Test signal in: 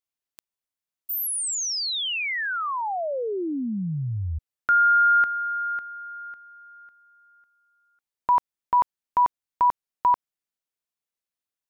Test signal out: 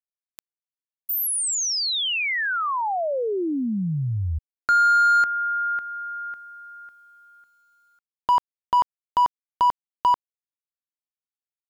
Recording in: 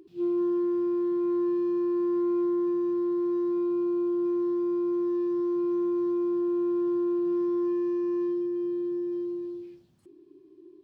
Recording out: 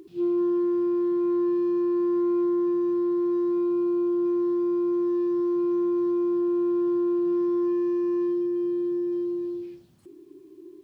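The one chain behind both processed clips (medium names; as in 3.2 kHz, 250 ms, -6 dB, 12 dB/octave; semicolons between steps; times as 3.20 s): in parallel at -1 dB: compression 5:1, threshold -34 dBFS; on the sum: bit crusher 12-bit; overload inside the chain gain 14.5 dB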